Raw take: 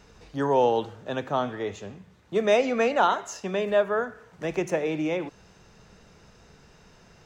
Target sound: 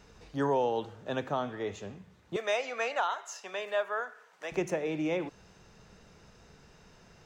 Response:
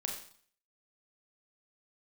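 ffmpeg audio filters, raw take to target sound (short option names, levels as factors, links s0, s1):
-filter_complex "[0:a]asettb=1/sr,asplit=3[s0][s1][s2];[s0]atrim=end=2.364[s3];[s1]atrim=start=2.36:end=4.52,asetpts=PTS-STARTPTS,afade=t=in:d=0.004:c=qsin,afade=t=out:st=2.156:d=0.004:c=qsin,highpass=750[s4];[s2]atrim=start=4.516[s5];[s3][s4]acrossfade=d=0.004:c1=hsin:c2=qsin[s6];[s6][s5]acrossfade=d=0.004:c1=qsin:c2=hsin,alimiter=limit=0.15:level=0:latency=1:release=434,volume=0.708"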